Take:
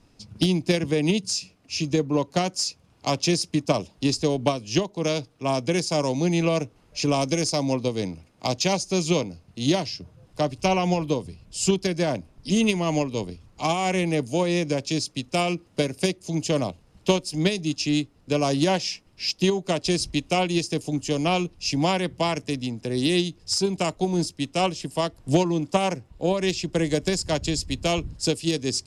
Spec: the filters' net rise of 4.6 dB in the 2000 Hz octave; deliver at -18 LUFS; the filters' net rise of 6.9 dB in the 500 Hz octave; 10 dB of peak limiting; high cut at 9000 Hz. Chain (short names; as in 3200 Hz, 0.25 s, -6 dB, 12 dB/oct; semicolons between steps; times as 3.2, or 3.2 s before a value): LPF 9000 Hz; bell 500 Hz +8.5 dB; bell 2000 Hz +5.5 dB; gain +6 dB; limiter -7 dBFS